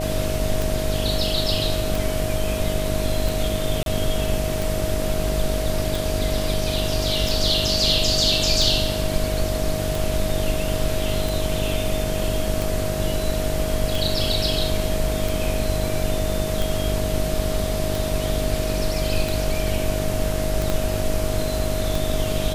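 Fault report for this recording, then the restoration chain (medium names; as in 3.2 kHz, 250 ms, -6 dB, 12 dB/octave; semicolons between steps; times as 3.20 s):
buzz 50 Hz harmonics 15 -27 dBFS
tick 45 rpm
whine 630 Hz -27 dBFS
3.83–3.86 s: dropout 32 ms
20.70 s: pop -9 dBFS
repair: de-click; de-hum 50 Hz, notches 15; band-stop 630 Hz, Q 30; interpolate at 3.83 s, 32 ms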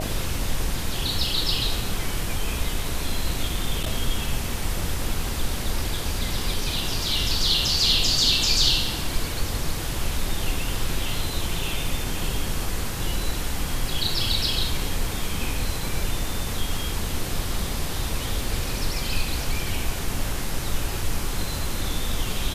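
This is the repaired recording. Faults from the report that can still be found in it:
20.70 s: pop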